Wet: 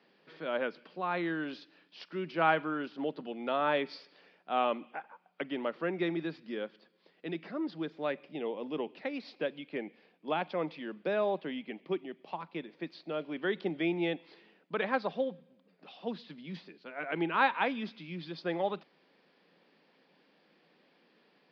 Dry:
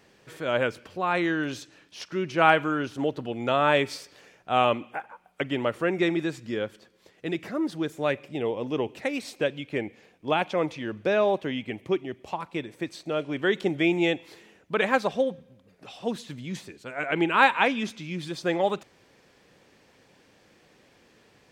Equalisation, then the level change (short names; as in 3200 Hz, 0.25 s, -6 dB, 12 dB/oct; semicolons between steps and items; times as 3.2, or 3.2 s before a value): Chebyshev band-pass 160–4900 Hz, order 5; dynamic EQ 2800 Hz, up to -4 dB, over -40 dBFS, Q 2.2; -7.0 dB